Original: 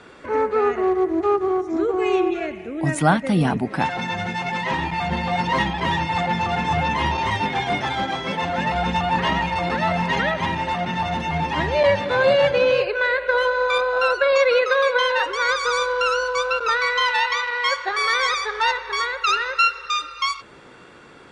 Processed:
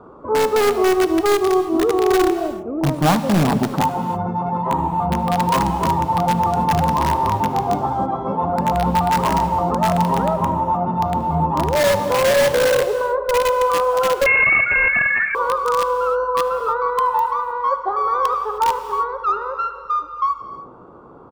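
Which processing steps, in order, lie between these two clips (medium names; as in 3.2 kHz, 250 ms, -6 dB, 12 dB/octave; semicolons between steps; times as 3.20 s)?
FFT filter 680 Hz 0 dB, 1.2 kHz +2 dB, 1.8 kHz -29 dB; in parallel at -4 dB: integer overflow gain 14 dB; on the sum: delay 75 ms -23.5 dB; on a send at -11 dB: reverberation, pre-delay 3 ms; 14.26–15.35 s: on the sum: frequency inversion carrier 2.7 kHz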